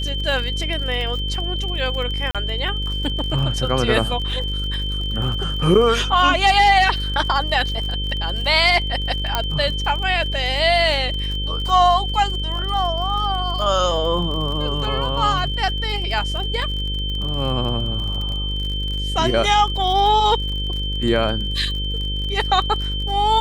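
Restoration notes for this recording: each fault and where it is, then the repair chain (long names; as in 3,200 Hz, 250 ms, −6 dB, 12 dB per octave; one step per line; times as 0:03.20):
mains buzz 50 Hz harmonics 11 −25 dBFS
surface crackle 39 per second −27 dBFS
whistle 3,100 Hz −26 dBFS
0:02.31–0:02.35: drop-out 37 ms
0:09.35: click −4 dBFS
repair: click removal
notch filter 3,100 Hz, Q 30
hum removal 50 Hz, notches 11
repair the gap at 0:02.31, 37 ms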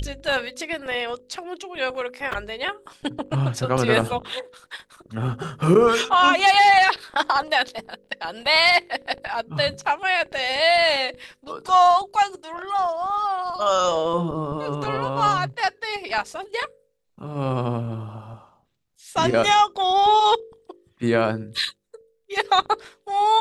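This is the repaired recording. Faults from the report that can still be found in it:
none of them is left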